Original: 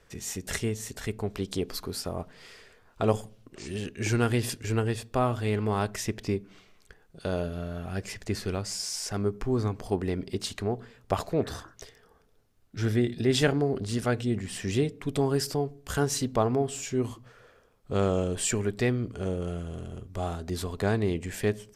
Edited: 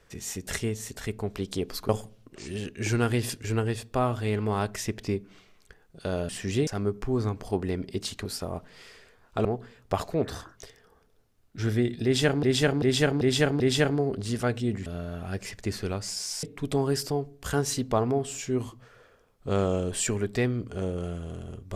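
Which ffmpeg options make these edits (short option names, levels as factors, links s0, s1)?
-filter_complex "[0:a]asplit=12[s0][s1][s2][s3][s4][s5][s6][s7][s8][s9][s10][s11];[s0]atrim=end=1.892[s12];[s1]atrim=start=3.088:end=7.492[s13];[s2]atrim=start=14.488:end=14.872[s14];[s3]atrim=start=9.058:end=10.642[s15];[s4]atrim=start=1.888:end=3.092[s16];[s5]atrim=start=10.638:end=13.622[s17];[s6]atrim=start=13.228:end=13.622[s18];[s7]atrim=start=13.228:end=13.622[s19];[s8]atrim=start=13.228:end=13.622[s20];[s9]atrim=start=13.228:end=14.492[s21];[s10]atrim=start=7.488:end=9.062[s22];[s11]atrim=start=14.868[s23];[s12][s13]acrossfade=d=0.004:c1=hsin:c2=hsin[s24];[s24][s14]acrossfade=d=0.004:c1=hsin:c2=hsin[s25];[s25][s15]acrossfade=d=0.004:c1=hsin:c2=hsin[s26];[s26][s16]acrossfade=d=0.004:c1=hsin:c2=hsin[s27];[s27][s17]acrossfade=d=0.004:c1=hsin:c2=hsin[s28];[s28][s18]acrossfade=d=0.004:c1=hsin:c2=hsin[s29];[s29][s19]acrossfade=d=0.004:c1=hsin:c2=hsin[s30];[s30][s20]acrossfade=d=0.004:c1=hsin:c2=hsin[s31];[s31][s21]acrossfade=d=0.004:c1=hsin:c2=hsin[s32];[s32][s22]acrossfade=d=0.004:c1=hsin:c2=hsin[s33];[s33][s23]acrossfade=d=0.004:c1=hsin:c2=hsin"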